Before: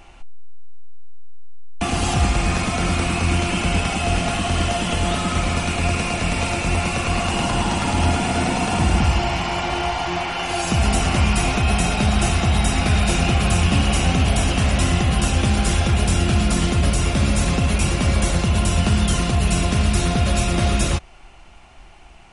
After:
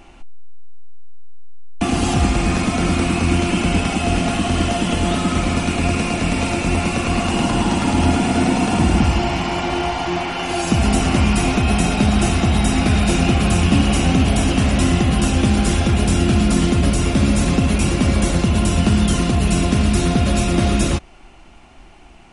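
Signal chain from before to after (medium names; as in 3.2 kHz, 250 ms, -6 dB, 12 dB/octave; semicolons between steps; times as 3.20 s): peaking EQ 270 Hz +8.5 dB 1.1 oct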